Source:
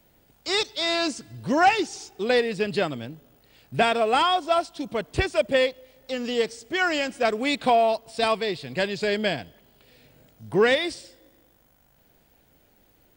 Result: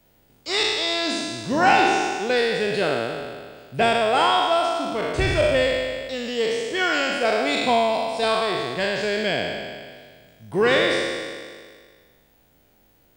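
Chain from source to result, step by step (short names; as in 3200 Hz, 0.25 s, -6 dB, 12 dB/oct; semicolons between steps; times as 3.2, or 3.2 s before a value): spectral trails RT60 1.83 s; gain -2 dB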